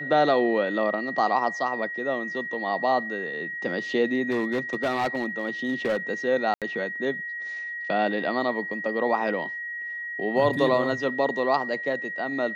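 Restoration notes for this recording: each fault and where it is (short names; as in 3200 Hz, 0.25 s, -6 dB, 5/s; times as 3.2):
tone 1900 Hz -31 dBFS
4.3–5.97 clipped -20.5 dBFS
6.54–6.62 gap 77 ms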